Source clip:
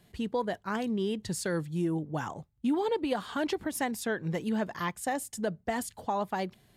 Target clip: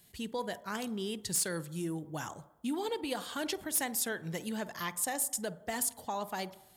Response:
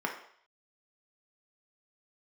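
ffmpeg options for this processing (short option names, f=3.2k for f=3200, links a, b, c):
-filter_complex "[0:a]crystalizer=i=4.5:c=0,aeval=exprs='0.168*(abs(mod(val(0)/0.168+3,4)-2)-1)':c=same,asplit=2[a][b];[1:a]atrim=start_sample=2205,asetrate=27342,aresample=44100,adelay=49[c];[b][c]afir=irnorm=-1:irlink=0,volume=-24dB[d];[a][d]amix=inputs=2:normalize=0,volume=-7dB"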